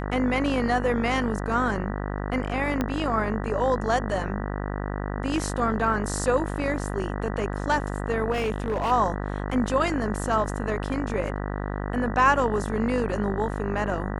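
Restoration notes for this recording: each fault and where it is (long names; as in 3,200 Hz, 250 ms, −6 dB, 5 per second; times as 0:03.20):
mains buzz 50 Hz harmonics 39 −30 dBFS
0:02.81: click −12 dBFS
0:08.31–0:08.92: clipping −21.5 dBFS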